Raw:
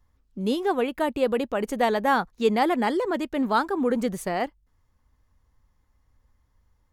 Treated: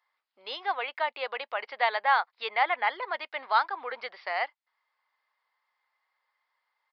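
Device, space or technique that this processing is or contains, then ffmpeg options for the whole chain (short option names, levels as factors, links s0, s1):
musical greeting card: -filter_complex "[0:a]asplit=3[s0][s1][s2];[s0]afade=t=out:st=2.48:d=0.02[s3];[s1]lowpass=f=3700:w=0.5412,lowpass=f=3700:w=1.3066,afade=t=in:st=2.48:d=0.02,afade=t=out:st=3.01:d=0.02[s4];[s2]afade=t=in:st=3.01:d=0.02[s5];[s3][s4][s5]amix=inputs=3:normalize=0,aresample=11025,aresample=44100,highpass=f=740:w=0.5412,highpass=f=740:w=1.3066,equalizer=f=2100:t=o:w=0.2:g=8"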